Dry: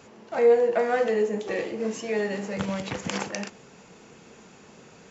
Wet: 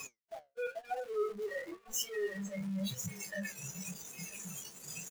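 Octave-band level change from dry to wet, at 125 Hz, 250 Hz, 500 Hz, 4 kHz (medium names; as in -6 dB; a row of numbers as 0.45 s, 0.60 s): -6.0 dB, -10.0 dB, -16.0 dB, -5.0 dB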